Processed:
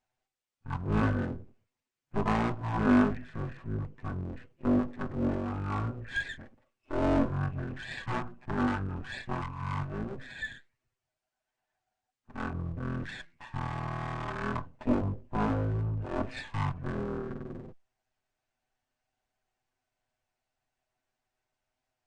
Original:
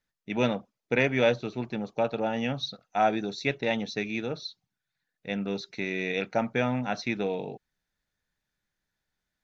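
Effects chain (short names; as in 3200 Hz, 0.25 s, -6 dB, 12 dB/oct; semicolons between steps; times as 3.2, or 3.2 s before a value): minimum comb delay 3.4 ms; speed mistake 78 rpm record played at 33 rpm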